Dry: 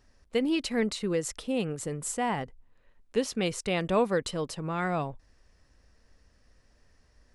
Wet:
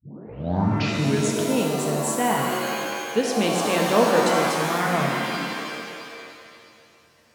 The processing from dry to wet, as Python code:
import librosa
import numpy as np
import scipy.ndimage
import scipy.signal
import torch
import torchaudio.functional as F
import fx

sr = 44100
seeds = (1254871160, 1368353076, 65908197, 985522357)

y = fx.tape_start_head(x, sr, length_s=1.36)
y = scipy.signal.sosfilt(scipy.signal.butter(4, 110.0, 'highpass', fs=sr, output='sos'), y)
y = fx.rev_shimmer(y, sr, seeds[0], rt60_s=2.2, semitones=7, shimmer_db=-2, drr_db=0.5)
y = F.gain(torch.from_numpy(y), 4.0).numpy()